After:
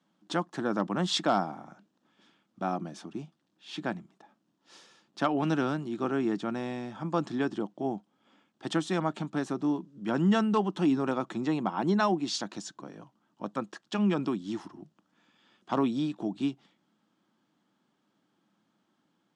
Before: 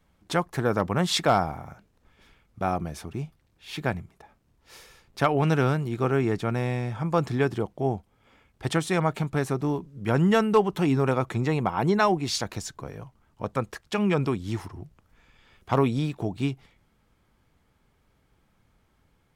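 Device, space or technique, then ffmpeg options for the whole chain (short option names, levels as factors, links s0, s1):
television speaker: -af "highpass=f=180:w=0.5412,highpass=f=180:w=1.3066,equalizer=f=200:t=q:w=4:g=5,equalizer=f=310:t=q:w=4:g=7,equalizer=f=450:t=q:w=4:g=-7,equalizer=f=2200:t=q:w=4:g=-8,equalizer=f=3300:t=q:w=4:g=3,lowpass=f=7800:w=0.5412,lowpass=f=7800:w=1.3066,volume=0.596"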